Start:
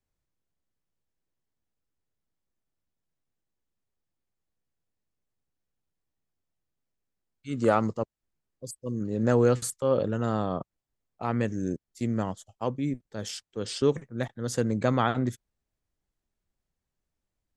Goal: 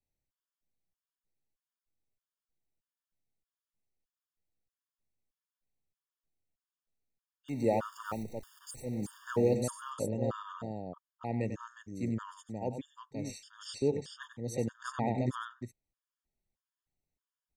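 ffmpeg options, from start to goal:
-filter_complex "[0:a]asettb=1/sr,asplit=3[a][b][c];[a]atrim=end=7.484[d];[b]atrim=start=7.48:end=9.56,asetpts=PTS-STARTPTS,afade=t=in:d=0.004:c=qsin,afade=t=out:st=2.076:d=0.004:c=qsin,aeval=exprs='val(0)+0.5*0.0141*sgn(val(0))':c=same[e];[c]atrim=start=9.556[f];[d][e]acrossfade=d=0.004:c1=hsin:c2=qsin[g];[g][f]acrossfade=d=0.004:c1=qsin:c2=hsin,aecho=1:1:95|359:0.335|0.531,afftfilt=real='re*gt(sin(2*PI*1.6*pts/sr)*(1-2*mod(floor(b*sr/1024/920),2)),0)':imag='im*gt(sin(2*PI*1.6*pts/sr)*(1-2*mod(floor(b*sr/1024/920),2)),0)':win_size=1024:overlap=0.75,volume=-6dB"

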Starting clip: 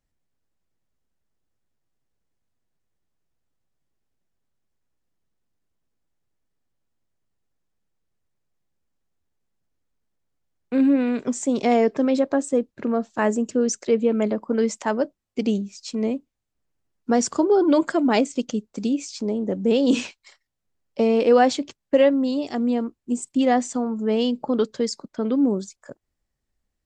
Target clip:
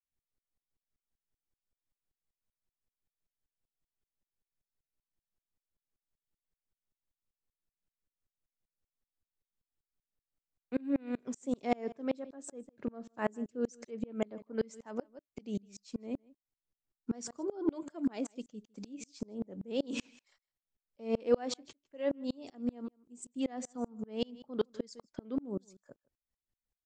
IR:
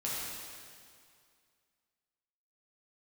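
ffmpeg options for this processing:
-af "aecho=1:1:156:0.106,aeval=exprs='val(0)*pow(10,-33*if(lt(mod(-5.2*n/s,1),2*abs(-5.2)/1000),1-mod(-5.2*n/s,1)/(2*abs(-5.2)/1000),(mod(-5.2*n/s,1)-2*abs(-5.2)/1000)/(1-2*abs(-5.2)/1000))/20)':c=same,volume=-6.5dB"

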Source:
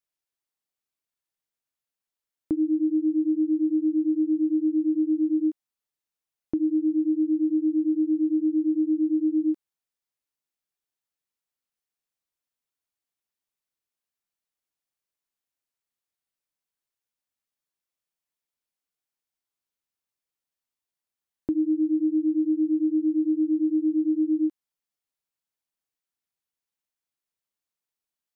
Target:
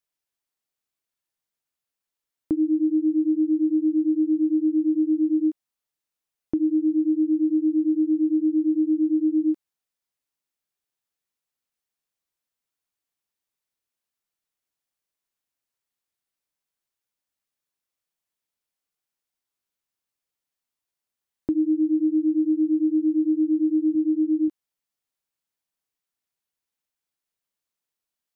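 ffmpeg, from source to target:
-filter_complex "[0:a]asettb=1/sr,asplit=3[a][b][c];[a]atrim=end=23.954[d];[b]atrim=start=23.95:end=24.48,asetpts=PTS-STARTPTS,afade=t=in:d=0.004:c=qsin,afade=t=out:st=0.526:d=0.004:c=qsin,bandpass=f=390:t=q:w=0.75:csg=0[e];[c]atrim=start=24.476[f];[d][e]acrossfade=d=0.004:c1=hsin:c2=qsin[g];[g][f]acrossfade=d=0.004:c1=qsin:c2=hsin,volume=2dB"

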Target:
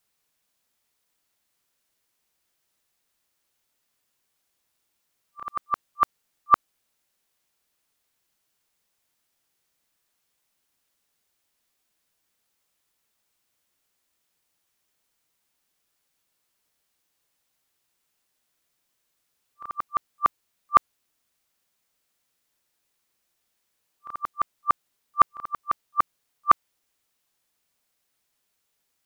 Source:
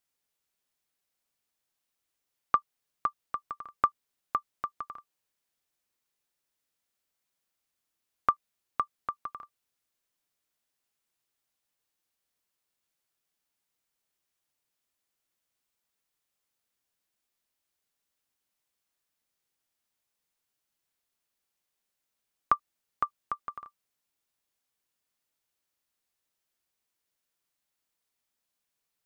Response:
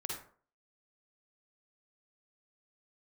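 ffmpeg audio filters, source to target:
-af "areverse,volume=8dB"

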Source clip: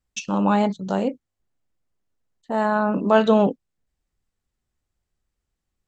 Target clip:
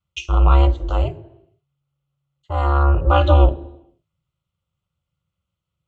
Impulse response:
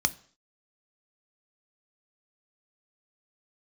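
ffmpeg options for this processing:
-filter_complex "[0:a]equalizer=f=200:t=o:w=0.33:g=11,equalizer=f=400:t=o:w=0.33:g=10,equalizer=f=1.25k:t=o:w=0.33:g=6,equalizer=f=3.15k:t=o:w=0.33:g=7,aeval=exprs='val(0)*sin(2*PI*140*n/s)':c=same,asplit=2[a][b];[1:a]atrim=start_sample=2205,asetrate=25578,aresample=44100,highshelf=f=4.3k:g=-4[c];[b][c]afir=irnorm=-1:irlink=0,volume=-7dB[d];[a][d]amix=inputs=2:normalize=0,volume=-6dB"

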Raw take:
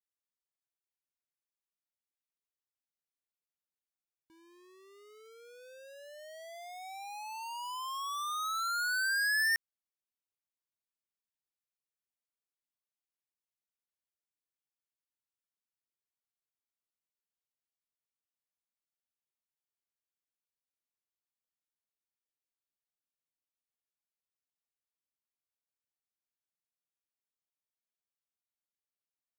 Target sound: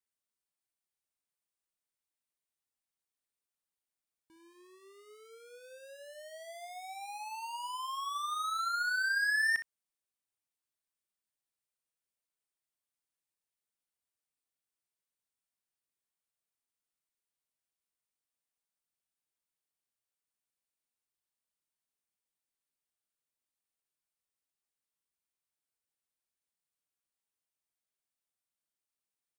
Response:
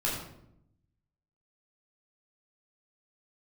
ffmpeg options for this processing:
-filter_complex "[0:a]acrossover=split=4600[a][b];[b]acompressor=threshold=-51dB:ratio=4:attack=1:release=60[c];[a][c]amix=inputs=2:normalize=0,equalizer=f=8.9k:w=5.5:g=8,aecho=1:1:33|62:0.188|0.282"

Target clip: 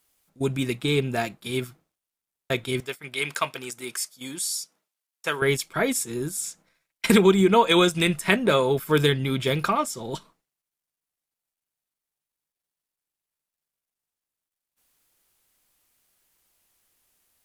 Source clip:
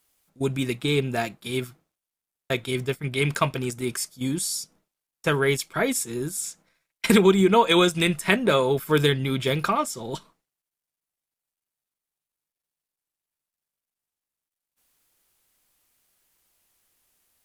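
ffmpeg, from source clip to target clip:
-filter_complex "[0:a]asettb=1/sr,asplit=3[a][b][c];[a]atrim=end=2.804[d];[b]atrim=start=2.8:end=5.42,asetpts=PTS-STARTPTS,afade=t=in:d=0.004:c=qsin,afade=t=out:st=2.616:d=0.004:c=qsin,highpass=f=900:p=1[e];[c]atrim=start=5.416[f];[d][e]acrossfade=d=0.004:c1=hsin:c2=qsin[g];[g][f]acrossfade=d=0.004:c1=qsin:c2=hsin"

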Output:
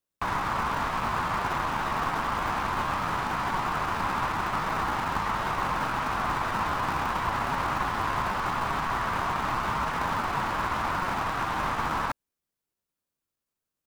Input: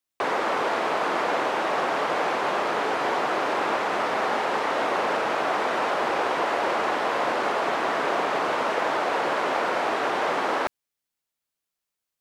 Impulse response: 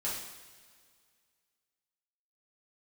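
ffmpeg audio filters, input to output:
-filter_complex "[0:a]highshelf=f=5k:g=5,atempo=0.88,highpass=f=990:t=q:w=2.4,asplit=2[a][b];[b]acrusher=samples=40:mix=1:aa=0.000001,volume=-7dB[c];[a][c]amix=inputs=2:normalize=0,volume=-7.5dB"

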